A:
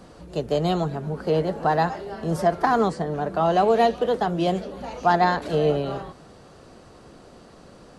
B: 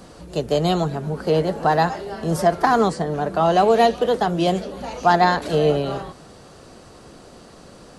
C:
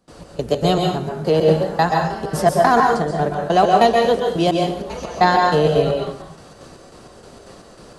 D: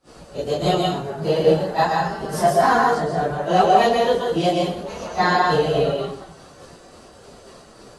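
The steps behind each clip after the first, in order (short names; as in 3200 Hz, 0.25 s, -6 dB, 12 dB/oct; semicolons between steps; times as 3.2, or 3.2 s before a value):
high shelf 4200 Hz +6.5 dB; gain +3 dB
step gate ".xx..xx.xx." 193 bpm -24 dB; plate-style reverb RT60 0.57 s, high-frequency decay 0.9×, pre-delay 0.115 s, DRR 0.5 dB; gain +2 dB
phase scrambler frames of 0.1 s; low shelf 380 Hz -3 dB; gain -1 dB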